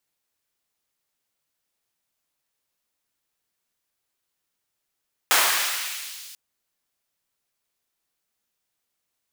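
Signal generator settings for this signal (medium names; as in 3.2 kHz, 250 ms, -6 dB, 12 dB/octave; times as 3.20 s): swept filtered noise pink, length 1.04 s highpass, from 870 Hz, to 4 kHz, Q 0.93, exponential, gain ramp -24 dB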